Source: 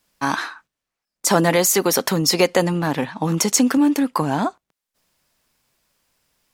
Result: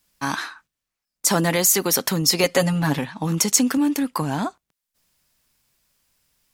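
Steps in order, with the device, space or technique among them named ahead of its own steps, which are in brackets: smiley-face EQ (bass shelf 180 Hz +3 dB; peaking EQ 540 Hz -5 dB 2.8 oct; treble shelf 8.2 kHz +4.5 dB); 2.43–2.99 s: comb 7.2 ms, depth 90%; trim -1 dB

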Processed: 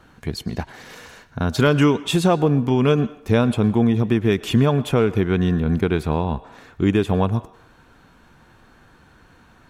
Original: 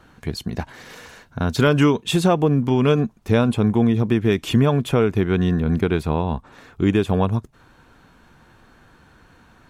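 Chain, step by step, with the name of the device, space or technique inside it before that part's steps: filtered reverb send (on a send: high-pass 430 Hz + low-pass 7.3 kHz + reverberation RT60 0.75 s, pre-delay 101 ms, DRR 16.5 dB)

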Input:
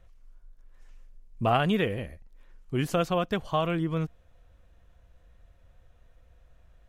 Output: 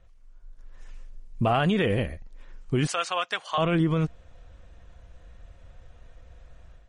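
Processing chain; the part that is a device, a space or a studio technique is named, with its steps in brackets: 2.87–3.58 s: high-pass 1.1 kHz 12 dB/octave; low-bitrate web radio (level rider gain up to 9 dB; peak limiter -14.5 dBFS, peak gain reduction 9.5 dB; MP3 40 kbps 44.1 kHz)

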